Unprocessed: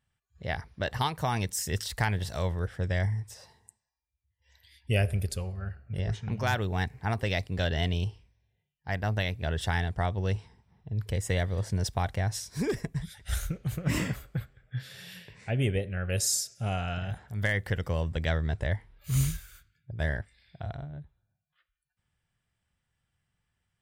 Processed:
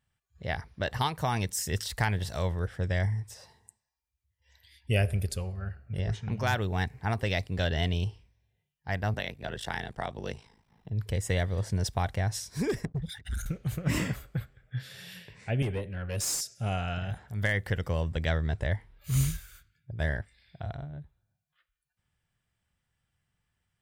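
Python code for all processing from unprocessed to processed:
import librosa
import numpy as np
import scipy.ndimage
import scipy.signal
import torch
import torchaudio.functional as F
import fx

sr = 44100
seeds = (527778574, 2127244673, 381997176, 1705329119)

y = fx.chain(x, sr, fx.peak_eq(hz=93.0, db=-11.5, octaves=1.3),
    fx.ring_mod(carrier_hz=27.0),
    fx.band_squash(depth_pct=40), at=(9.14, 10.9))
y = fx.chain(y, sr, fx.envelope_sharpen(power=2.0),
    fx.highpass(hz=120.0, slope=6),
    fx.leveller(passes=2), at=(12.85, 13.46))
y = fx.chain(y, sr, fx.highpass(hz=71.0, slope=24),
    fx.tube_stage(drive_db=24.0, bias=0.45), at=(15.62, 16.41))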